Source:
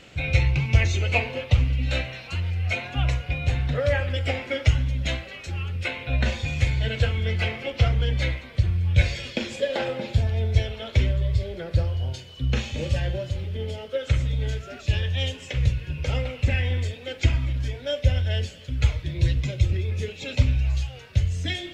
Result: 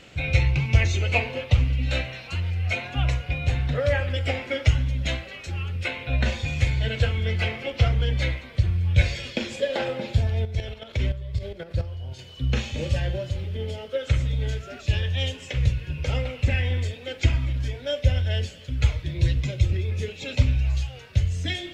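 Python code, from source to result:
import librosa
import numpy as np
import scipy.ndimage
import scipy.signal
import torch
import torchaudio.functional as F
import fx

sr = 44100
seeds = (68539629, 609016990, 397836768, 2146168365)

y = fx.level_steps(x, sr, step_db=11, at=(10.45, 12.19))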